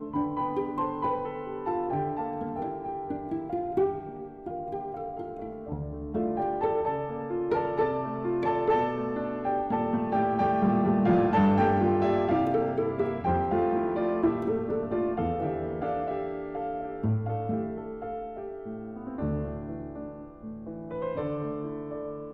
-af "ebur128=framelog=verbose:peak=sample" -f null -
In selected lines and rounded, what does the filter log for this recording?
Integrated loudness:
  I:         -29.2 LUFS
  Threshold: -39.3 LUFS
Loudness range:
  LRA:        10.2 LU
  Threshold: -49.0 LUFS
  LRA low:   -35.0 LUFS
  LRA high:  -24.8 LUFS
Sample peak:
  Peak:      -14.9 dBFS